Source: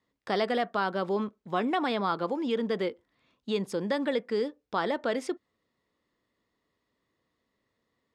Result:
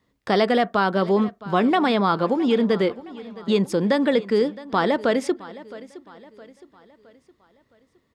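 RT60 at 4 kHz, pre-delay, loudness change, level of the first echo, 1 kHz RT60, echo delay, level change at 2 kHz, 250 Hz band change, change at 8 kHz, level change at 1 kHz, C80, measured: no reverb audible, no reverb audible, +9.0 dB, −18.5 dB, no reverb audible, 665 ms, +7.5 dB, +10.5 dB, +7.5 dB, +8.0 dB, no reverb audible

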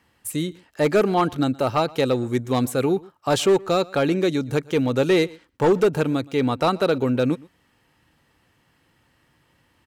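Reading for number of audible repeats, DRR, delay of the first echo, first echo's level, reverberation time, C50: 1, no reverb audible, 120 ms, −23.5 dB, no reverb audible, no reverb audible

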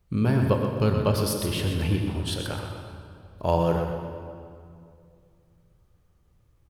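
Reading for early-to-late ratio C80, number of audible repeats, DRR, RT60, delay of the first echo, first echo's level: 3.5 dB, 2, 2.0 dB, 2.4 s, 125 ms, −7.5 dB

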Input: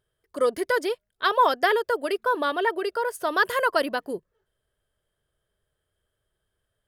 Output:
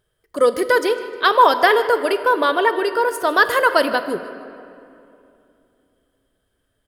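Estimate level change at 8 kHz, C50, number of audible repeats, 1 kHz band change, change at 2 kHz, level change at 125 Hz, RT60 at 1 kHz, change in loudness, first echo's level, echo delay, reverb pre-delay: +7.5 dB, 11.0 dB, 2, +7.5 dB, +7.5 dB, can't be measured, 2.6 s, +7.5 dB, −18.5 dB, 154 ms, 4 ms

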